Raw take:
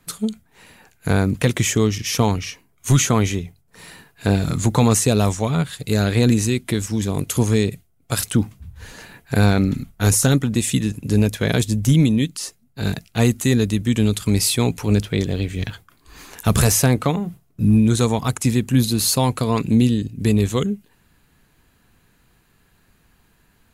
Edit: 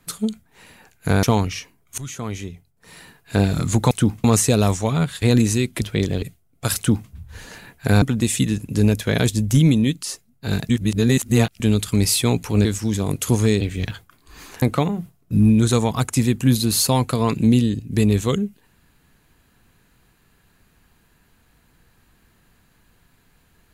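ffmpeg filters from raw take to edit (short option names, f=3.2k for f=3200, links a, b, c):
-filter_complex "[0:a]asplit=14[a][b][c][d][e][f][g][h][i][j][k][l][m][n];[a]atrim=end=1.232[o];[b]atrim=start=2.138:end=2.89,asetpts=PTS-STARTPTS,afade=t=out:st=0.748:d=0.004:c=hsin:silence=0.0841395[p];[c]atrim=start=2.89:end=4.822,asetpts=PTS-STARTPTS,afade=t=in:d=1.38:silence=0.0841395[q];[d]atrim=start=8.238:end=8.572[r];[e]atrim=start=4.818:end=5.802[s];[f]atrim=start=6.138:end=6.732[t];[g]atrim=start=14.988:end=15.402[u];[h]atrim=start=7.688:end=9.492[v];[i]atrim=start=10.358:end=13.032[w];[j]atrim=start=13.028:end=13.942,asetpts=PTS-STARTPTS,areverse[x];[k]atrim=start=13.938:end=14.992[y];[l]atrim=start=6.728:end=7.692[z];[m]atrim=start=15.398:end=16.412[aa];[n]atrim=start=16.898[ab];[p][q]concat=n=2:v=0:a=1[ac];[o][ac]acrossfade=d=0.004:c1=hsin:c2=hsin[ad];[ad][r]acrossfade=d=0.004:c1=hsin:c2=hsin[ae];[ae][s]acrossfade=d=0.004:c1=hsin:c2=hsin[af];[af][t]acrossfade=d=0.004:c1=hsin:c2=hsin[ag];[ag][u]acrossfade=d=0.004:c1=hsin:c2=hsin[ah];[ah][v]acrossfade=d=0.004:c1=hsin:c2=hsin[ai];[ai][w]acrossfade=d=0.004:c1=hsin:c2=hsin[aj];[aj][x]acrossfade=d=0.004:c1=hsin:c2=hsin[ak];[ak][y]acrossfade=d=0.004:c1=hsin:c2=hsin[al];[al][z]acrossfade=d=0.004:c1=hsin:c2=hsin[am];[am][aa]acrossfade=d=0.004:c1=hsin:c2=hsin[an];[an][ab]acrossfade=d=0.004:c1=hsin:c2=hsin"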